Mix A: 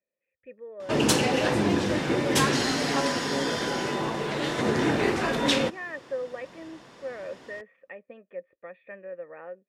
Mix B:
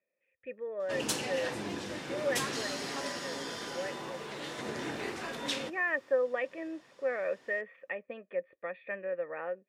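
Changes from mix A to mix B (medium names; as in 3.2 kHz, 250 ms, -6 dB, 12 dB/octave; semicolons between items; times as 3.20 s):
speech +5.0 dB; first sound -12.0 dB; master: add tilt EQ +1.5 dB/octave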